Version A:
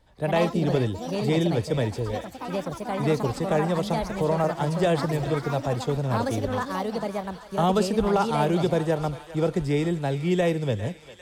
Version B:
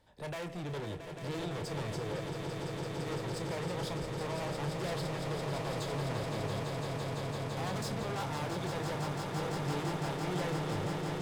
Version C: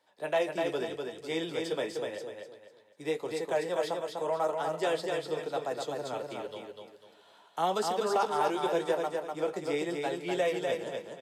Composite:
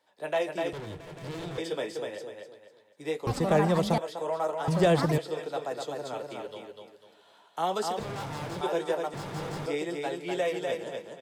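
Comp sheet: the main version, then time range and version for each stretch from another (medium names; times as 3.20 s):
C
0.73–1.58 s: from B
3.27–3.98 s: from A
4.68–5.18 s: from A
7.99–8.61 s: from B
9.14–9.66 s: from B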